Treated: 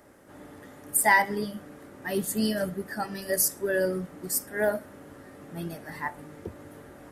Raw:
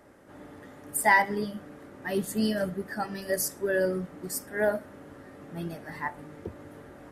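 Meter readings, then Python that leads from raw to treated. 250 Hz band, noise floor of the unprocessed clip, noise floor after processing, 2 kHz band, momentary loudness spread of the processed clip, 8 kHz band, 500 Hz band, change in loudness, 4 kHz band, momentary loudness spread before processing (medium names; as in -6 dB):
0.0 dB, -50 dBFS, -50 dBFS, +0.5 dB, 25 LU, +5.5 dB, 0.0 dB, +1.5 dB, +2.5 dB, 24 LU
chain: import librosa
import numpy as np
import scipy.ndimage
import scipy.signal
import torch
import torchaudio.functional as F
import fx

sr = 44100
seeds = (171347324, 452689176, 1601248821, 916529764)

y = fx.high_shelf(x, sr, hz=6600.0, db=8.5)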